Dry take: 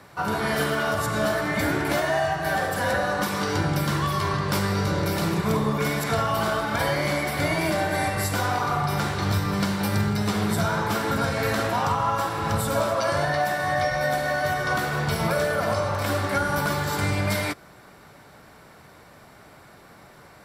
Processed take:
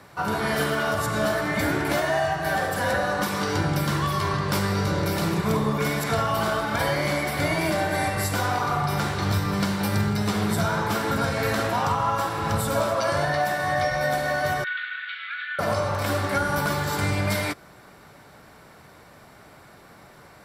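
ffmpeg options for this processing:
-filter_complex "[0:a]asettb=1/sr,asplit=3[s0][s1][s2];[s0]atrim=end=14.644[s3];[s1]atrim=start=14.64:end=15.59,asetpts=PTS-STARTPTS,afade=t=in:d=0.004:c=qsin,afade=t=out:st=0.946:d=0.004:c=qsin,asuperpass=centerf=2300:order=12:qfactor=0.98[s4];[s2]atrim=start=15.586[s5];[s3][s4]acrossfade=d=0.004:c1=hsin:c2=qsin[s6];[s6][s5]acrossfade=d=0.004:c1=qsin:c2=hsin"

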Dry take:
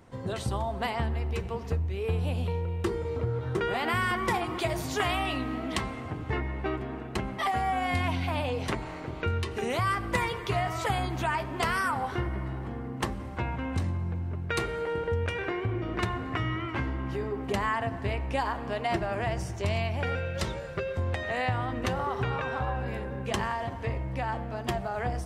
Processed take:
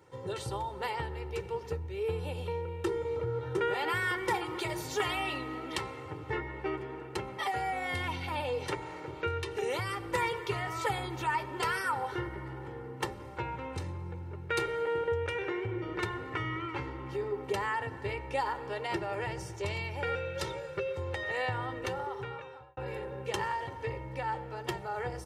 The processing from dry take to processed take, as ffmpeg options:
-filter_complex "[0:a]asplit=2[s0][s1];[s0]atrim=end=22.77,asetpts=PTS-STARTPTS,afade=t=out:st=21.68:d=1.09[s2];[s1]atrim=start=22.77,asetpts=PTS-STARTPTS,afade=t=in:d=0.004:c=hsin[s3];[s2][s3]concat=n=2:v=0:a=1,highpass=130,aecho=1:1:2.2:0.84,volume=0.562"

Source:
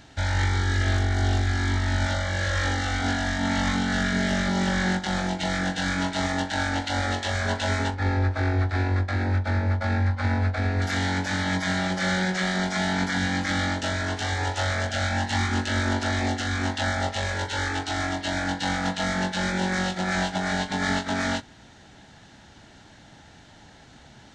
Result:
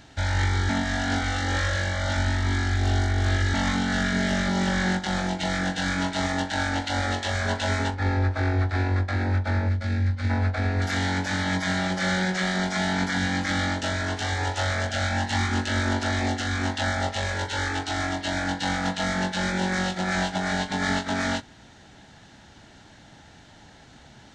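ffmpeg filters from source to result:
-filter_complex "[0:a]asettb=1/sr,asplit=3[s0][s1][s2];[s0]atrim=end=9.694[s3];[s1]atrim=start=9.69:end=10.3,asetpts=PTS-STARTPTS,afade=t=in:d=0.004:c=qsin,afade=t=out:st=0.606:d=0.004:c=qsin,equalizer=f=900:w=0.94:g=-13.5[s4];[s2]atrim=start=10.296[s5];[s3][s4]acrossfade=d=0.004:c1=hsin:c2=qsin[s6];[s6][s5]acrossfade=d=0.004:c1=qsin:c2=hsin,asplit=3[s7][s8][s9];[s7]atrim=end=0.692[s10];[s8]atrim=start=0.688:end=3.542,asetpts=PTS-STARTPTS,areverse[s11];[s9]atrim=start=3.538[s12];[s10][s11]acrossfade=d=0.004:c1=hsin:c2=hsin[s13];[s13][s12]acrossfade=d=0.004:c1=hsin:c2=hsin"

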